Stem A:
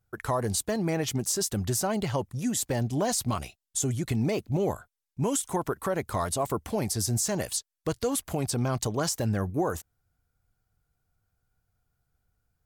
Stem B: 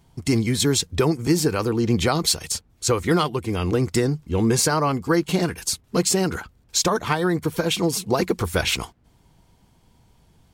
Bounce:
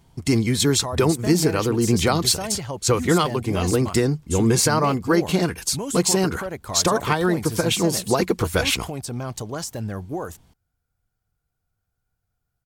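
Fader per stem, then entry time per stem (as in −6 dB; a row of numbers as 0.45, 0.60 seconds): −2.0, +1.0 decibels; 0.55, 0.00 seconds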